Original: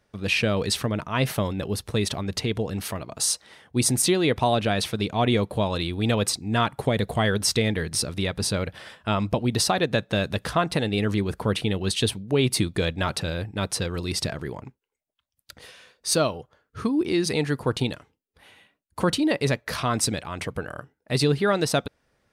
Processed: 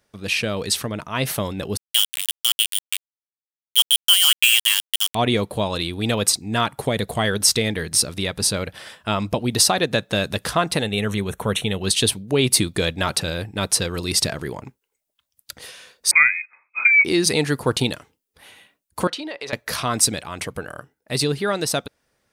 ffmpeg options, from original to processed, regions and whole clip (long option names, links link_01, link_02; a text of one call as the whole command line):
ffmpeg -i in.wav -filter_complex "[0:a]asettb=1/sr,asplit=3[link_01][link_02][link_03];[link_01]atrim=end=1.774[link_04];[link_02]atrim=start=1.77:end=5.15,asetpts=PTS-STARTPTS,afade=type=in:duration=0.004:curve=qsin,afade=type=out:start_time=3.376:duration=0.004:curve=qsin,lowpass=frequency=2900:width_type=q:width=0.5098,lowpass=frequency=2900:width_type=q:width=0.6013,lowpass=frequency=2900:width_type=q:width=0.9,lowpass=frequency=2900:width_type=q:width=2.563,afreqshift=-3400,aeval=exprs='val(0)*gte(abs(val(0)),0.0841)':channel_layout=same,highpass=1500[link_05];[link_03]atrim=start=5.146[link_06];[link_04][link_05]acrossfade=duration=0.004:curve1=hsin:curve2=qsin[link_07];[link_07][link_06]acrossfade=duration=0.004:curve1=qsin:curve2=hsin,asettb=1/sr,asplit=3[link_08][link_09][link_10];[link_08]atrim=end=10.824[link_11];[link_09]atrim=start=10.82:end=11.83,asetpts=PTS-STARTPTS,afade=type=in:duration=0.004:curve=qsin,afade=type=out:start_time=1.006:duration=0.004:curve=qsin,asuperstop=centerf=4800:order=4:qfactor=3.4,equalizer=frequency=310:width_type=o:width=0.29:gain=-9.5[link_12];[link_10]atrim=start=11.826[link_13];[link_11][link_12]acrossfade=duration=0.004:curve1=hsin:curve2=qsin[link_14];[link_14][link_13]acrossfade=duration=0.004:curve1=qsin:curve2=hsin,asettb=1/sr,asplit=3[link_15][link_16][link_17];[link_15]atrim=end=16.114[link_18];[link_16]atrim=start=16.11:end=17.05,asetpts=PTS-STARTPTS,afade=type=in:duration=0.004:curve=qsin,afade=type=out:start_time=0.936:duration=0.004:curve=qsin,lowshelf=frequency=190:gain=8.5,lowpass=frequency=2200:width_type=q:width=0.5098,lowpass=frequency=2200:width_type=q:width=0.6013,lowpass=frequency=2200:width_type=q:width=0.9,lowpass=frequency=2200:width_type=q:width=2.563,afreqshift=-2600[link_19];[link_17]atrim=start=17.046[link_20];[link_18][link_19]acrossfade=duration=0.004:curve1=hsin:curve2=qsin[link_21];[link_21][link_20]acrossfade=duration=0.004:curve1=qsin:curve2=hsin,asettb=1/sr,asplit=3[link_22][link_23][link_24];[link_22]atrim=end=19.074[link_25];[link_23]atrim=start=19.07:end=19.53,asetpts=PTS-STARTPTS,afade=type=in:duration=0.004:curve=qsin,afade=type=out:start_time=0.456:duration=0.004:curve=qsin,acrossover=split=390 5200:gain=0.1 1 0.112[link_26][link_27][link_28];[link_26][link_27][link_28]amix=inputs=3:normalize=0,acompressor=threshold=-29dB:ratio=10:attack=3.2:release=140:knee=1:detection=peak[link_29];[link_24]atrim=start=19.526[link_30];[link_25][link_29]acrossfade=duration=0.004:curve1=hsin:curve2=qsin[link_31];[link_31][link_30]acrossfade=duration=0.004:curve1=qsin:curve2=hsin,highshelf=frequency=5200:gain=9.5,dynaudnorm=framelen=190:gausssize=17:maxgain=11.5dB,lowshelf=frequency=140:gain=-4.5,volume=-1dB" out.wav